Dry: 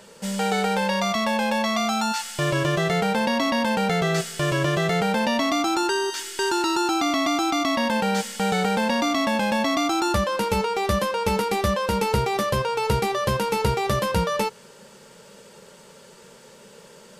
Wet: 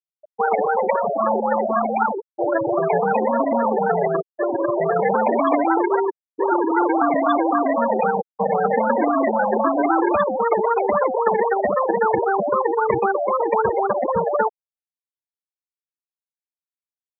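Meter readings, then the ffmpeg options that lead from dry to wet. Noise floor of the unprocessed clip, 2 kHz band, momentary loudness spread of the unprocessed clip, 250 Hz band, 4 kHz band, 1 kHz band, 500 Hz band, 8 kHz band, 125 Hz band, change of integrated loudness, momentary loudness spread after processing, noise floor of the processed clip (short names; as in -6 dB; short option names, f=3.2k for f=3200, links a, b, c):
-49 dBFS, -1.5 dB, 3 LU, +0.5 dB, under -20 dB, +5.0 dB, +6.0 dB, under -40 dB, -9.5 dB, +3.0 dB, 4 LU, under -85 dBFS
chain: -filter_complex "[0:a]acrusher=samples=27:mix=1:aa=0.000001:lfo=1:lforange=16.2:lforate=3.8,asoftclip=type=hard:threshold=-11dB,acrossover=split=280 2800:gain=0.224 1 0.158[a][b][c];[a][b][c]amix=inputs=3:normalize=0,crystalizer=i=5:c=0,afftfilt=real='re*gte(hypot(re,im),0.2)':imag='im*gte(hypot(re,im),0.2)':win_size=1024:overlap=0.75,volume=7dB"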